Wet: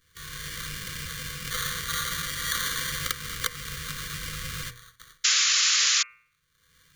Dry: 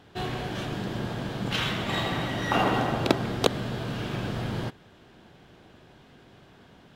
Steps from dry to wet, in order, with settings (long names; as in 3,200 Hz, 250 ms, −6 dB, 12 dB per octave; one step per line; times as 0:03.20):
fade in at the beginning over 0.51 s
delay with a high-pass on its return 222 ms, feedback 82%, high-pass 2,600 Hz, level −14.5 dB
noise gate with hold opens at −34 dBFS
EQ curve with evenly spaced ripples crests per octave 1.1, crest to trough 10 dB
decimation without filtering 17×
sound drawn into the spectrogram noise, 0:05.24–0:06.03, 480–7,300 Hz −24 dBFS
downward compressor 6 to 1, threshold −23 dBFS, peak gain reduction 10 dB
guitar amp tone stack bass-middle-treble 10-0-10
upward compression, threshold −49 dBFS
Chebyshev band-stop filter 510–1,100 Hz, order 4
hum removal 120.1 Hz, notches 23
level +8 dB